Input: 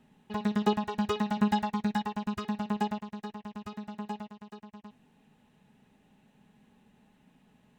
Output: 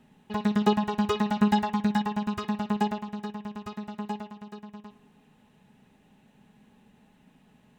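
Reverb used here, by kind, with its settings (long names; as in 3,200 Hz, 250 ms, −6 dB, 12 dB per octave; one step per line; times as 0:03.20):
spring reverb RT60 2.1 s, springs 53 ms, chirp 60 ms, DRR 16 dB
level +3.5 dB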